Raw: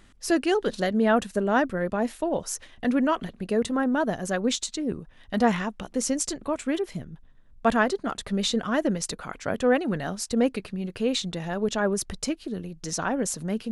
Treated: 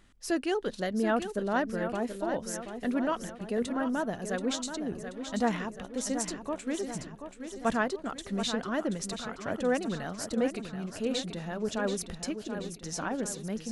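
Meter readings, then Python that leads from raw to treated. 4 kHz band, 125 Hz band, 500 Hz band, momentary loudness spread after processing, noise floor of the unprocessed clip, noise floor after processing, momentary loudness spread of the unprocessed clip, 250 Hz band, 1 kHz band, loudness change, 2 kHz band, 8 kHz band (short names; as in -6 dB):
-6.0 dB, -6.0 dB, -6.0 dB, 7 LU, -54 dBFS, -48 dBFS, 9 LU, -6.0 dB, -6.0 dB, -6.0 dB, -6.0 dB, -6.0 dB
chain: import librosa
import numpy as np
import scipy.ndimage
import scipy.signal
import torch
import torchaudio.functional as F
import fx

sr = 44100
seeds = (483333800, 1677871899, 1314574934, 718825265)

y = fx.echo_feedback(x, sr, ms=731, feedback_pct=53, wet_db=-9.0)
y = y * 10.0 ** (-6.5 / 20.0)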